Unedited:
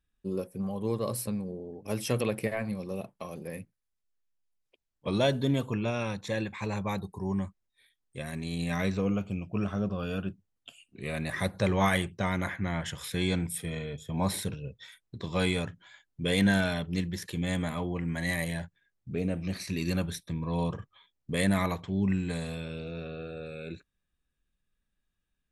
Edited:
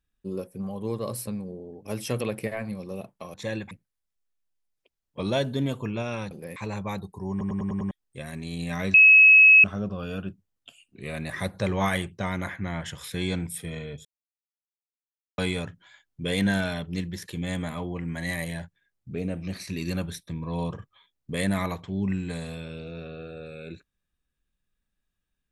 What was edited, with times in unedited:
3.34–3.59 swap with 6.19–6.56
7.31 stutter in place 0.10 s, 6 plays
8.94–9.64 bleep 2570 Hz -10 dBFS
14.05–15.38 mute

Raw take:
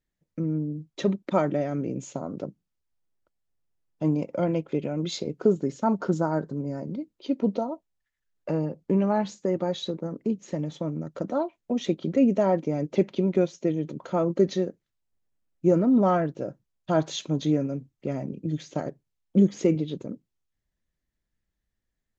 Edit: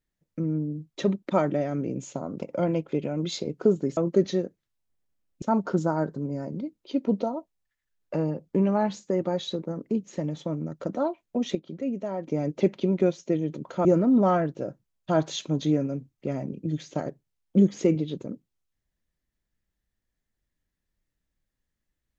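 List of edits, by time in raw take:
2.42–4.22 cut
11.9–12.62 gain -9.5 dB
14.2–15.65 move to 5.77

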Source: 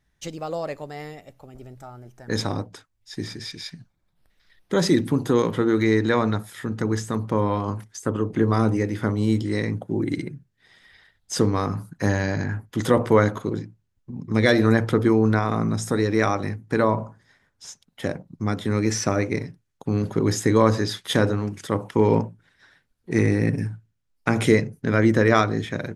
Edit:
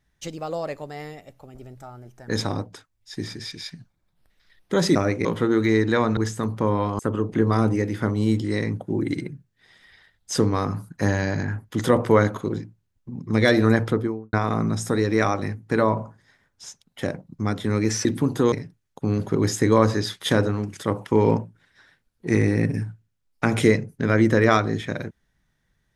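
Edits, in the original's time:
4.95–5.42 swap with 19.06–19.36
6.34–6.88 cut
7.7–8 cut
14.79–15.34 studio fade out

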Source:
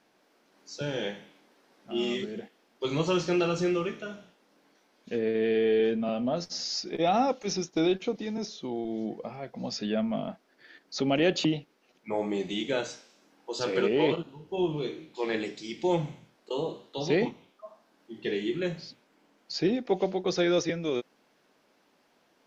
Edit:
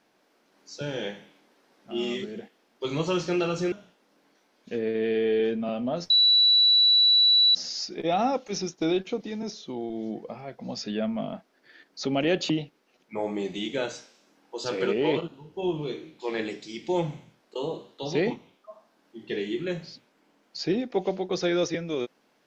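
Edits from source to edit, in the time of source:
3.72–4.12 cut
6.5 add tone 3940 Hz -15.5 dBFS 1.45 s

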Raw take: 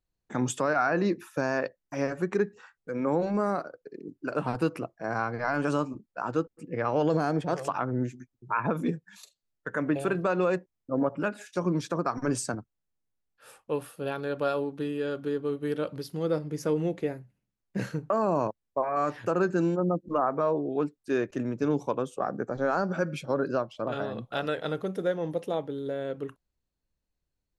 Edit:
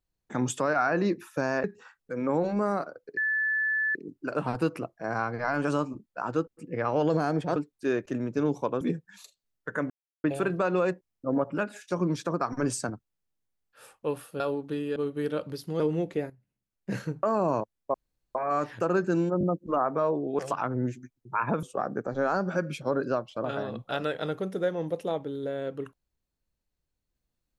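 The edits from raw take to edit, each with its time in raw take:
1.64–2.42 cut
3.95 add tone 1740 Hz -24 dBFS 0.78 s
7.56–8.8 swap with 20.81–22.06
9.89 insert silence 0.34 s
14.05–14.49 cut
15.05–15.42 cut
16.26–16.67 cut
17.17–18.09 fade in equal-power, from -12 dB
18.81 insert room tone 0.41 s
19.85 stutter 0.02 s, 3 plays

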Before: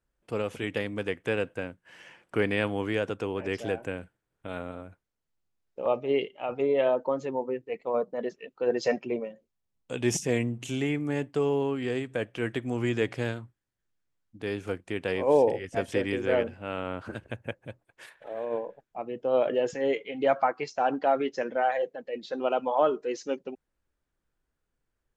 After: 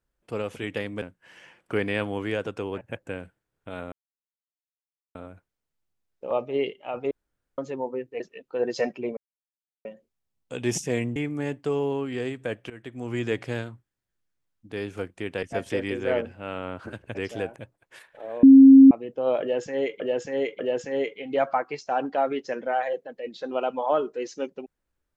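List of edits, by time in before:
1.02–1.65 cut
3.44–3.85 swap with 17.37–17.63
4.7 insert silence 1.23 s
6.66–7.13 room tone
7.75–8.27 cut
9.24 insert silence 0.68 s
10.55–10.86 cut
12.4–12.95 fade in, from -18 dB
15.13–15.65 cut
18.5–18.98 bleep 269 Hz -6.5 dBFS
19.48–20.07 loop, 3 plays

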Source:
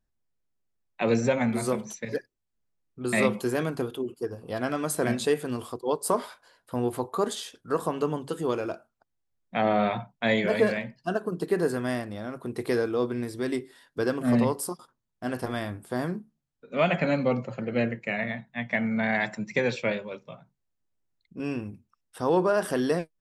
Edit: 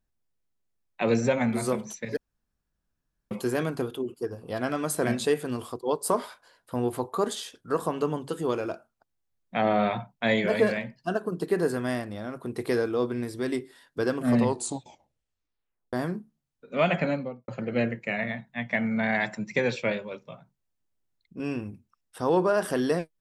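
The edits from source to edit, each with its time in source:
2.17–3.31 room tone
14.41 tape stop 1.52 s
16.95–17.48 studio fade out

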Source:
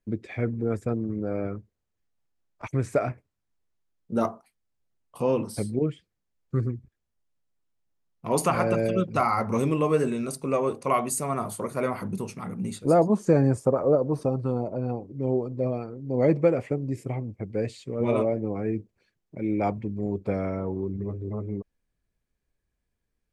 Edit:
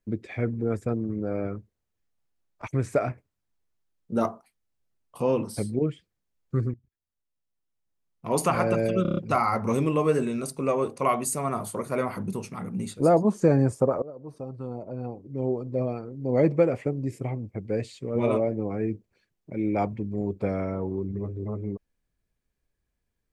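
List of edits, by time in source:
6.74–8.52 fade in, from -17.5 dB
9.02 stutter 0.03 s, 6 plays
13.87–15.71 fade in, from -24 dB

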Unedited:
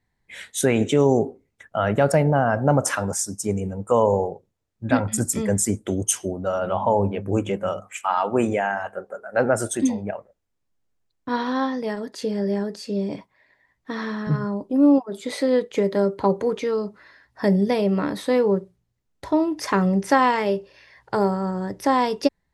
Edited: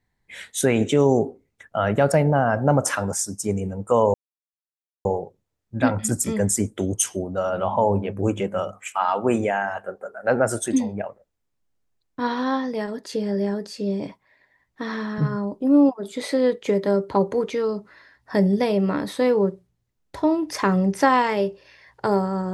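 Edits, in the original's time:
4.14 insert silence 0.91 s

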